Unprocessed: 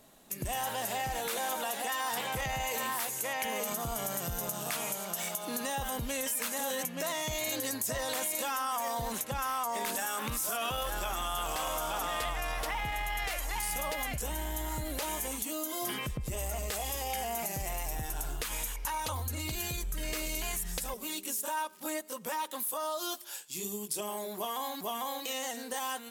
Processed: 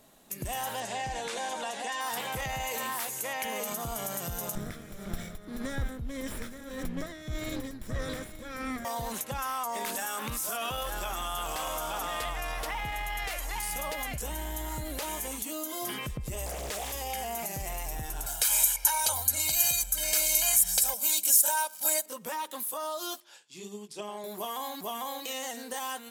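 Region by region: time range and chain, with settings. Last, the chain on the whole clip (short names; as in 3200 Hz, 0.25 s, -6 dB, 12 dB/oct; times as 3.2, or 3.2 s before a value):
0.8–2.01 LPF 8400 Hz 24 dB/oct + notch 1300 Hz, Q 10
4.55–8.85 minimum comb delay 0.54 ms + tilt -3 dB/oct + tremolo 1.7 Hz, depth 69%
16.46–16.93 comb 6.6 ms, depth 37% + Doppler distortion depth 0.65 ms
18.26–22.06 tone controls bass -13 dB, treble +12 dB + comb 1.3 ms, depth 90%
23.2–24.24 BPF 120–5200 Hz + upward expander, over -50 dBFS
whole clip: dry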